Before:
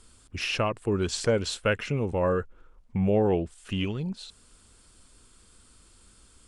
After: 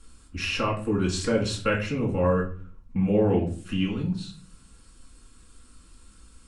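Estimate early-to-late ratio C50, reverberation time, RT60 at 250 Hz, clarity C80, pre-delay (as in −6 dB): 9.5 dB, 0.45 s, 0.75 s, 14.5 dB, 4 ms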